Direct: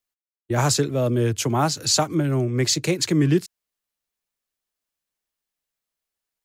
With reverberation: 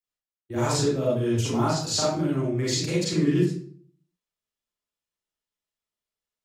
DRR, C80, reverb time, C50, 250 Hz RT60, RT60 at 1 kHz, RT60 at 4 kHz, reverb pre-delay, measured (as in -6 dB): -8.0 dB, 5.0 dB, 0.55 s, -1.5 dB, 0.65 s, 0.50 s, 0.40 s, 35 ms